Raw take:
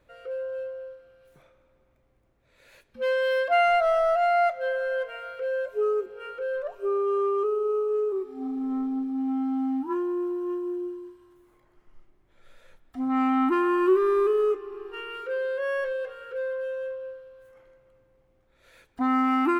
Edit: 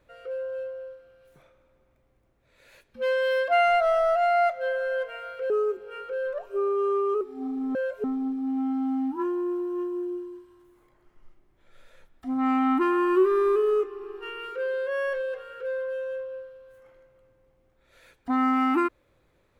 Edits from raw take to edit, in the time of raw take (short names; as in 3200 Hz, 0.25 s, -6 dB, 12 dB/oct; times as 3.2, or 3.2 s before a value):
5.5–5.79 move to 8.75
7.5–8.21 cut